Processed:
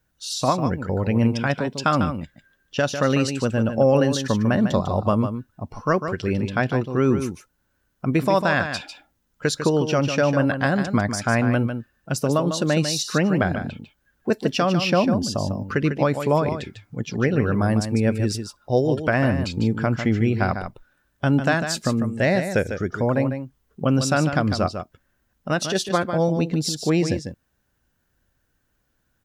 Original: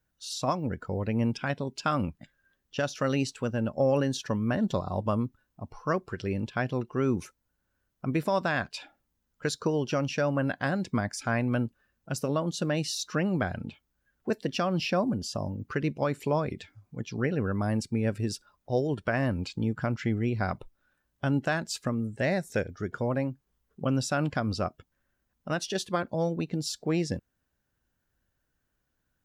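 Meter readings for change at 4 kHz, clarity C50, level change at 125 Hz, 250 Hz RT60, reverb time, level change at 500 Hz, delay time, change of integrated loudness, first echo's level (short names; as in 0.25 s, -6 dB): +8.0 dB, none, +8.0 dB, none, none, +8.0 dB, 0.149 s, +8.0 dB, -8.5 dB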